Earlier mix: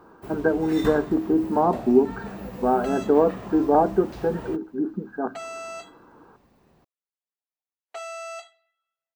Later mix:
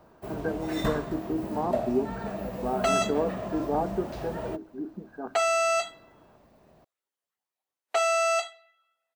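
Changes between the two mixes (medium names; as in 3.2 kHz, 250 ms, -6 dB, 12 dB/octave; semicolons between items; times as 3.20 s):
speech -9.5 dB; first sound: add peaking EQ 630 Hz +12.5 dB 0.26 oct; second sound +11.5 dB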